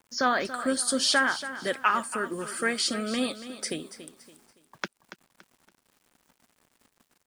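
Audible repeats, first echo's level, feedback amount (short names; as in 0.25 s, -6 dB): 3, -13.0 dB, 35%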